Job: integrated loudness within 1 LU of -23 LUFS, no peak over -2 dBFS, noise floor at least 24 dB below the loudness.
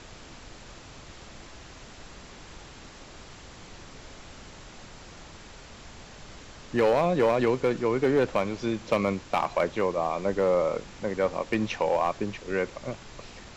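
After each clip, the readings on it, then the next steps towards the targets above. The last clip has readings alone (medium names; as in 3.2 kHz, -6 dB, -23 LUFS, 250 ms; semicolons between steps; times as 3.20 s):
clipped samples 0.4%; clipping level -16.0 dBFS; noise floor -47 dBFS; noise floor target -51 dBFS; loudness -27.0 LUFS; peak level -16.0 dBFS; loudness target -23.0 LUFS
-> clip repair -16 dBFS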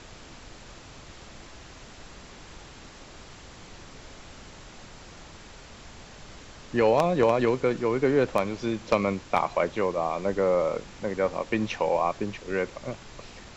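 clipped samples 0.0%; noise floor -47 dBFS; noise floor target -50 dBFS
-> noise print and reduce 6 dB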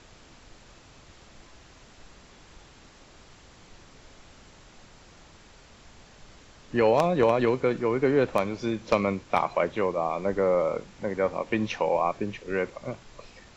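noise floor -53 dBFS; loudness -26.0 LUFS; peak level -7.0 dBFS; loudness target -23.0 LUFS
-> trim +3 dB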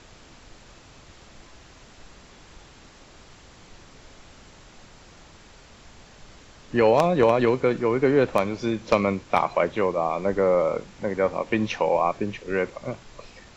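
loudness -23.0 LUFS; peak level -4.0 dBFS; noise floor -50 dBFS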